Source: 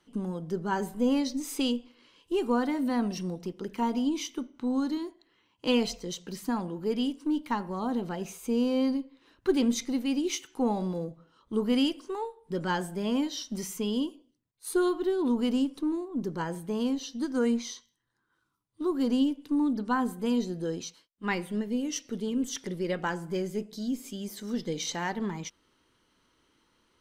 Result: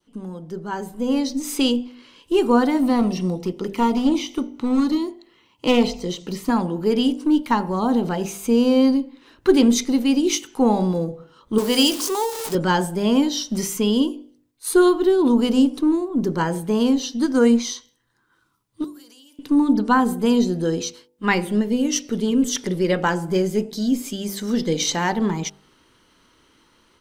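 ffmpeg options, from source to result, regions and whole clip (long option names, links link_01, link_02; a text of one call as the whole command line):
ffmpeg -i in.wav -filter_complex "[0:a]asettb=1/sr,asplit=3[link_01][link_02][link_03];[link_01]atrim=end=2.824[link_04];[link_02]atrim=start=2.82:end=6.5,asetpts=PTS-STARTPTS,afade=type=in:duration=0.004:curve=qsin,afade=type=out:start_time=3.676:duration=0.004:curve=qsin,acrossover=split=3600[link_05][link_06];[link_06]acompressor=threshold=-48dB:ratio=4:attack=1:release=60[link_07];[link_05][link_07]amix=inputs=2:normalize=0,aeval=exprs='clip(val(0),-1,0.0447)':channel_layout=same,bandreject=frequency=1600:width=5.5[link_08];[link_03]atrim=start=6.496[link_09];[link_04][link_08]acrossfade=duration=0.004:curve1=hsin:curve2=qsin[link_10];[link_10][link_09]acrossfade=duration=0.004:curve1=qsin:curve2=hsin,asettb=1/sr,asplit=3[link_11][link_12][link_13];[link_11]atrim=end=11.584[link_14];[link_12]atrim=start=11.58:end=12.55,asetpts=PTS-STARTPTS,afade=type=in:duration=0.004:curve=qsin,afade=type=out:start_time=0.966:duration=0.004:curve=qsin,aeval=exprs='val(0)+0.5*0.0106*sgn(val(0))':channel_layout=same,acompressor=mode=upward:threshold=-36dB:ratio=2.5:attack=3.2:release=140:knee=2.83:detection=peak,bass=frequency=250:gain=-12,treble=frequency=4000:gain=11[link_15];[link_13]atrim=start=12.546[link_16];[link_14][link_15]acrossfade=duration=0.004:curve1=hsin:curve2=qsin[link_17];[link_17][link_16]acrossfade=duration=0.004:curve1=qsin:curve2=hsin,asettb=1/sr,asplit=3[link_18][link_19][link_20];[link_18]atrim=end=18.844[link_21];[link_19]atrim=start=18.84:end=19.39,asetpts=PTS-STARTPTS,afade=type=in:duration=0.004:curve=qsin,afade=type=out:start_time=0.546:duration=0.004:curve=qsin,aderivative,acompressor=threshold=-56dB:ratio=16:attack=3.2:release=140:knee=1:detection=peak[link_22];[link_20]atrim=start=19.386[link_23];[link_21][link_22]acrossfade=duration=0.004:curve1=hsin:curve2=qsin[link_24];[link_24][link_23]acrossfade=duration=0.004:curve1=qsin:curve2=hsin,bandreject=frequency=49.3:width_type=h:width=4,bandreject=frequency=98.6:width_type=h:width=4,bandreject=frequency=147.9:width_type=h:width=4,bandreject=frequency=197.2:width_type=h:width=4,bandreject=frequency=246.5:width_type=h:width=4,bandreject=frequency=295.8:width_type=h:width=4,bandreject=frequency=345.1:width_type=h:width=4,bandreject=frequency=394.4:width_type=h:width=4,bandreject=frequency=443.7:width_type=h:width=4,bandreject=frequency=493:width_type=h:width=4,bandreject=frequency=542.3:width_type=h:width=4,bandreject=frequency=591.6:width_type=h:width=4,bandreject=frequency=640.9:width_type=h:width=4,bandreject=frequency=690.2:width_type=h:width=4,bandreject=frequency=739.5:width_type=h:width=4,bandreject=frequency=788.8:width_type=h:width=4,bandreject=frequency=838.1:width_type=h:width=4,bandreject=frequency=887.4:width_type=h:width=4,adynamicequalizer=threshold=0.00398:dfrequency=1900:dqfactor=1.3:tfrequency=1900:tqfactor=1.3:attack=5:release=100:ratio=0.375:range=2.5:mode=cutabove:tftype=bell,dynaudnorm=framelen=870:gausssize=3:maxgain=11.5dB" out.wav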